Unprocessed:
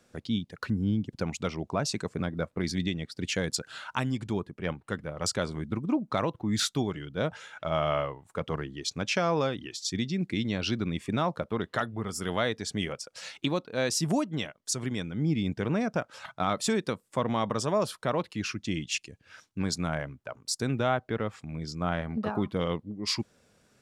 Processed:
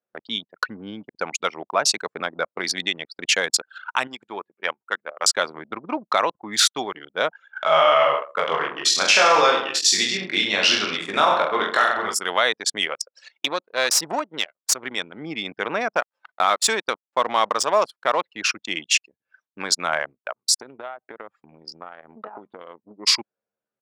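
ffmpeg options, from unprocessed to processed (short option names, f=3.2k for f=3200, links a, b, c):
-filter_complex "[0:a]asettb=1/sr,asplit=3[a][b][c];[a]atrim=end=4.074[d];[b]atrim=start=4.07:end=5.33,asetpts=PTS-STARTPTS,afade=t=in:d=0.004:c=qsin,afade=t=out:st=1.256:d=0.004:c=qsin,lowshelf=f=300:g=-9.5[e];[c]atrim=start=5.326[f];[d][e]acrossfade=d=0.004:c1=hsin:c2=qsin[g];[g][f]acrossfade=d=0.004:c1=qsin:c2=hsin,asplit=3[h][i][j];[h]afade=t=out:st=7.55:d=0.02[k];[i]aecho=1:1:20|43|69.45|99.87|134.8|175.1|221.3|274.5:0.794|0.631|0.501|0.398|0.316|0.251|0.2|0.158,afade=t=in:st=7.55:d=0.02,afade=t=out:st=12.13:d=0.02[l];[j]afade=t=in:st=12.13:d=0.02[m];[k][l][m]amix=inputs=3:normalize=0,asettb=1/sr,asplit=3[n][o][p];[n]atrim=end=13.284[q];[o]atrim=start=13.28:end=14.84,asetpts=PTS-STARTPTS,afade=t=in:d=0.004:c=qsin,afade=t=out:st=1.556:d=0.004:c=qsin,aeval=exprs='if(lt(val(0),0),0.447*val(0),val(0))':c=same[r];[p]atrim=start=14.836[s];[q][r]acrossfade=d=0.004:c1=hsin:c2=qsin[t];[t][s]acrossfade=d=0.004:c1=qsin:c2=hsin,asettb=1/sr,asplit=3[u][v][w];[u]atrim=end=15.954[x];[v]atrim=start=15.95:end=18.23,asetpts=PTS-STARTPTS,afade=t=in:d=0.004:c=qsin,afade=t=out:st=2.276:d=0.004:c=qsin,aeval=exprs='sgn(val(0))*max(abs(val(0))-0.00447,0)':c=same[y];[w]atrim=start=18.226[z];[x][y]acrossfade=d=0.004:c1=hsin:c2=qsin[aa];[aa][z]acrossfade=d=0.004:c1=qsin:c2=hsin,asettb=1/sr,asplit=3[ab][ac][ad];[ab]atrim=end=20.614[ae];[ac]atrim=start=20.61:end=22.91,asetpts=PTS-STARTPTS,afade=t=in:d=0.004:c=qsin,afade=t=out:st=2.296:d=0.004:c=qsin,acompressor=threshold=-34dB:ratio=10:attack=3.2:release=140:knee=1:detection=peak[af];[ad]atrim=start=22.906[ag];[ae][af]acrossfade=d=0.004:c1=hsin:c2=qsin[ah];[ah][ag]acrossfade=d=0.004:c1=qsin:c2=hsin,anlmdn=3.98,highpass=770,alimiter=level_in=18.5dB:limit=-1dB:release=50:level=0:latency=1,volume=-5dB"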